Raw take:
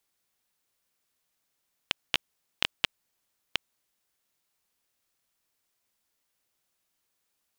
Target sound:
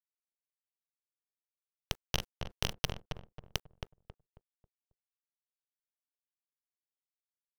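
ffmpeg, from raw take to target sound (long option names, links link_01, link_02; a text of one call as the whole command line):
ffmpeg -i in.wav -filter_complex "[0:a]acrossover=split=270|3000[link_01][link_02][link_03];[link_02]alimiter=limit=-21dB:level=0:latency=1[link_04];[link_01][link_04][link_03]amix=inputs=3:normalize=0,lowshelf=frequency=480:gain=11,bandreject=frequency=50:width_type=h:width=6,bandreject=frequency=100:width_type=h:width=6,bandreject=frequency=150:width_type=h:width=6,bandreject=frequency=200:width_type=h:width=6,bandreject=frequency=250:width_type=h:width=6,bandreject=frequency=300:width_type=h:width=6,bandreject=frequency=350:width_type=h:width=6,bandreject=frequency=400:width_type=h:width=6,asplit=3[link_05][link_06][link_07];[link_05]afade=type=out:start_time=2.15:duration=0.02[link_08];[link_06]asplit=2[link_09][link_10];[link_10]adelay=44,volume=-7dB[link_11];[link_09][link_11]amix=inputs=2:normalize=0,afade=type=in:start_time=2.15:duration=0.02,afade=type=out:start_time=2.72:duration=0.02[link_12];[link_07]afade=type=in:start_time=2.72:duration=0.02[link_13];[link_08][link_12][link_13]amix=inputs=3:normalize=0,aeval=exprs='max(val(0),0)':channel_layout=same,acrusher=bits=8:mix=0:aa=0.000001,asplit=2[link_14][link_15];[link_15]adelay=271,lowpass=frequency=1300:poles=1,volume=-4.5dB,asplit=2[link_16][link_17];[link_17]adelay=271,lowpass=frequency=1300:poles=1,volume=0.36,asplit=2[link_18][link_19];[link_19]adelay=271,lowpass=frequency=1300:poles=1,volume=0.36,asplit=2[link_20][link_21];[link_21]adelay=271,lowpass=frequency=1300:poles=1,volume=0.36,asplit=2[link_22][link_23];[link_23]adelay=271,lowpass=frequency=1300:poles=1,volume=0.36[link_24];[link_14][link_16][link_18][link_20][link_22][link_24]amix=inputs=6:normalize=0,volume=1dB" out.wav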